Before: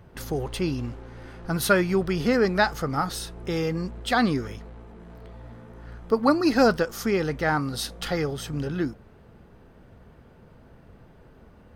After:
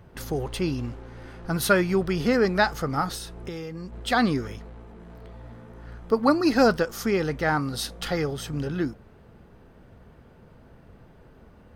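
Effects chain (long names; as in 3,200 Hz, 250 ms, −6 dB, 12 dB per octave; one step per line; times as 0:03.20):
0:03.14–0:03.93: downward compressor 10 to 1, threshold −32 dBFS, peak gain reduction 10 dB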